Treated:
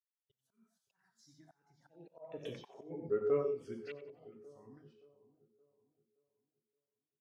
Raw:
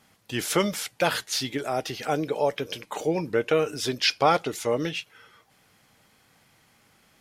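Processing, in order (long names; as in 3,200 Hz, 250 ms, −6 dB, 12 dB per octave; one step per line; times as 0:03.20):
source passing by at 0:02.54, 35 m/s, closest 4.3 metres
reverb whose tail is shaped and stops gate 160 ms flat, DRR 3.5 dB
noise gate with hold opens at −49 dBFS
phaser swept by the level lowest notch 250 Hz, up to 4,700 Hz, full sweep at −31.5 dBFS
volume swells 575 ms
high-shelf EQ 7,900 Hz −5.5 dB
echo with a time of its own for lows and highs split 1,100 Hz, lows 572 ms, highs 91 ms, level −11 dB
every bin expanded away from the loudest bin 1.5 to 1
level +6 dB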